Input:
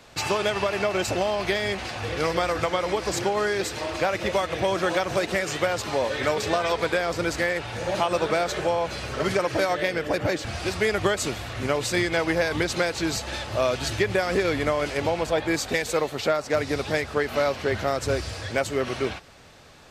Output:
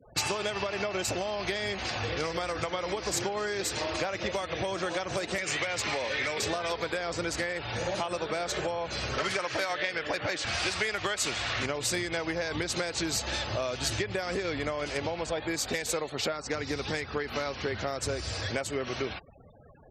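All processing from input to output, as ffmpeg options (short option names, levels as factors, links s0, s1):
-filter_complex "[0:a]asettb=1/sr,asplit=3[s0][s1][s2];[s0]atrim=end=5.384[s3];[s1]atrim=start=5.38:end=6.4,asetpts=PTS-STARTPTS,afade=t=in:d=0.004:c=qsin,afade=t=out:st=1.016:d=0.004:c=qsin,equalizer=f=2200:t=o:w=0.71:g=9,acrossover=split=430|2500[s4][s5][s6];[s4]acompressor=threshold=0.0178:ratio=4[s7];[s5]acompressor=threshold=0.0501:ratio=4[s8];[s6]acompressor=threshold=0.0282:ratio=4[s9];[s7][s8][s9]amix=inputs=3:normalize=0,volume=10,asoftclip=hard,volume=0.1[s10];[s2]atrim=start=6.396[s11];[s3][s10]acrossfade=d=0.004:c1=hsin:c2=qsin[s12];[s12][s11]acrossfade=d=0.004:c1=qsin:c2=hsin,asettb=1/sr,asplit=3[s13][s14][s15];[s13]atrim=end=9.184[s16];[s14]atrim=start=9.18:end=11.66,asetpts=PTS-STARTPTS,afade=t=in:d=0.004:c=qsin,afade=t=out:st=2.476:d=0.004:c=qsin,lowpass=f=2700:p=1,tiltshelf=f=820:g=-7.5,acontrast=26[s17];[s15]atrim=start=11.656[s18];[s16][s17]acrossfade=d=0.004:c1=hsin:c2=qsin[s19];[s19][s18]acrossfade=d=0.004:c1=qsin:c2=hsin,asettb=1/sr,asplit=3[s20][s21][s22];[s20]atrim=end=16.324[s23];[s21]atrim=start=16.32:end=17.77,asetpts=PTS-STARTPTS,afade=t=in:d=0.004:c=qsin,afade=t=out:st=1.446:d=0.004:c=qsin,equalizer=f=620:w=5.7:g=-8,aeval=exprs='val(0)+0.00447*(sin(2*PI*60*n/s)+sin(2*PI*2*60*n/s)/2+sin(2*PI*3*60*n/s)/3+sin(2*PI*4*60*n/s)/4+sin(2*PI*5*60*n/s)/5)':c=same,acrusher=bits=7:mode=log:mix=0:aa=0.000001[s24];[s22]atrim=start=17.766[s25];[s23][s24]acrossfade=d=0.004:c1=hsin:c2=qsin[s26];[s26][s25]acrossfade=d=0.004:c1=qsin:c2=hsin,afftfilt=real='re*gte(hypot(re,im),0.00794)':imag='im*gte(hypot(re,im),0.00794)':win_size=1024:overlap=0.75,acompressor=threshold=0.0355:ratio=6,highshelf=f=4500:g=8"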